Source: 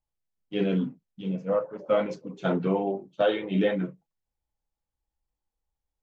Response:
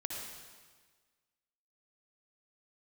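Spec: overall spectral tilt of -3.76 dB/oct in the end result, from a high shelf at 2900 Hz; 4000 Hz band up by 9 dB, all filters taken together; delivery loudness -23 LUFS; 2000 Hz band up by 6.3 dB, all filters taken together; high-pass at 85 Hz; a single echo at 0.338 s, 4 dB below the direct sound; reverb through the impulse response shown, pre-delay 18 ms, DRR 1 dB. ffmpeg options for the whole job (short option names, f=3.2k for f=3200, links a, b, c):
-filter_complex "[0:a]highpass=85,equalizer=f=2k:t=o:g=5,highshelf=f=2.9k:g=5,equalizer=f=4k:t=o:g=6,aecho=1:1:338:0.631,asplit=2[a][b];[1:a]atrim=start_sample=2205,adelay=18[c];[b][c]afir=irnorm=-1:irlink=0,volume=-2dB[d];[a][d]amix=inputs=2:normalize=0,volume=1dB"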